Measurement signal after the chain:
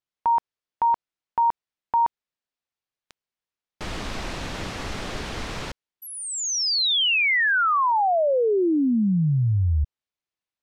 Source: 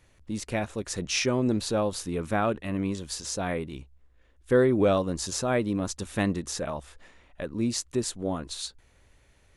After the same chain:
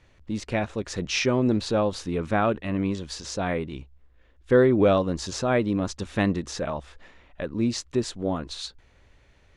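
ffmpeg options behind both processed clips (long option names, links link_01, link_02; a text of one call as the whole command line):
ffmpeg -i in.wav -af "lowpass=5000,volume=3dB" out.wav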